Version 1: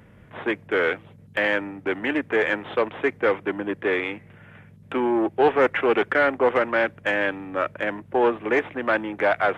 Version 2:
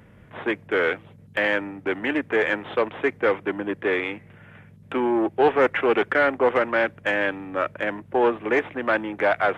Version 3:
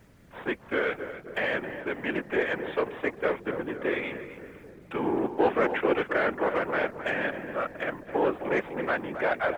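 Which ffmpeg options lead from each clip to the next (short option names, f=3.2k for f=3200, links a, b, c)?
-af anull
-filter_complex "[0:a]acrusher=bits=9:mix=0:aa=0.000001,asplit=2[a][b];[b]adelay=265,lowpass=f=1.6k:p=1,volume=-9dB,asplit=2[c][d];[d]adelay=265,lowpass=f=1.6k:p=1,volume=0.55,asplit=2[e][f];[f]adelay=265,lowpass=f=1.6k:p=1,volume=0.55,asplit=2[g][h];[h]adelay=265,lowpass=f=1.6k:p=1,volume=0.55,asplit=2[i][j];[j]adelay=265,lowpass=f=1.6k:p=1,volume=0.55,asplit=2[k][l];[l]adelay=265,lowpass=f=1.6k:p=1,volume=0.55[m];[a][c][e][g][i][k][m]amix=inputs=7:normalize=0,afftfilt=real='hypot(re,im)*cos(2*PI*random(0))':imag='hypot(re,im)*sin(2*PI*random(1))':win_size=512:overlap=0.75"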